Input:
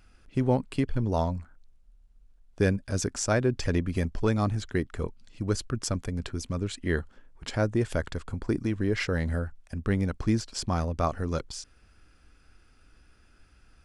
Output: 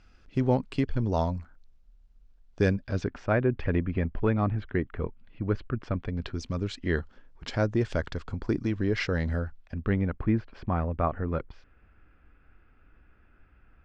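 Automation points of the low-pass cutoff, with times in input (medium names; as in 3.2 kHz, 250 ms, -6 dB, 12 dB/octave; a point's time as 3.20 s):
low-pass 24 dB/octave
2.69 s 6.3 kHz
3.21 s 2.7 kHz
5.87 s 2.7 kHz
6.45 s 5.8 kHz
9.41 s 5.8 kHz
10.18 s 2.4 kHz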